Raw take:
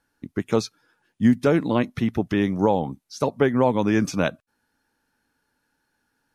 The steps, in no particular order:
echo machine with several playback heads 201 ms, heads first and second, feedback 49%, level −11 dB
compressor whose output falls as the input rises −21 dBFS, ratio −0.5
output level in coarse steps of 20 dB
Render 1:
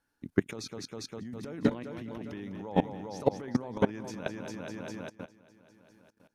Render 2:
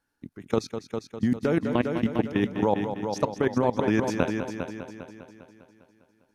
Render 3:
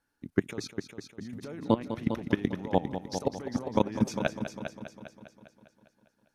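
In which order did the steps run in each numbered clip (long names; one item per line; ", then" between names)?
echo machine with several playback heads, then compressor whose output falls as the input rises, then output level in coarse steps
output level in coarse steps, then echo machine with several playback heads, then compressor whose output falls as the input rises
compressor whose output falls as the input rises, then output level in coarse steps, then echo machine with several playback heads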